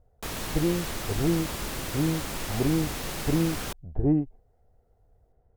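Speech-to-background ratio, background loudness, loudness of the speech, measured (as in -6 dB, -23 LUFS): 4.0 dB, -33.5 LUFS, -29.5 LUFS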